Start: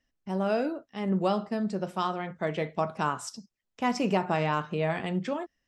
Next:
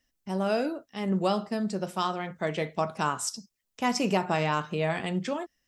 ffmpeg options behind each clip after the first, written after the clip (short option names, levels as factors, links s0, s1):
-af "highshelf=f=4700:g=11.5"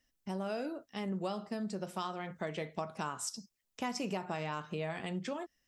-af "acompressor=threshold=0.02:ratio=3,volume=0.794"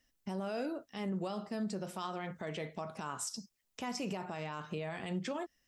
-af "alimiter=level_in=2.24:limit=0.0631:level=0:latency=1:release=27,volume=0.447,volume=1.26"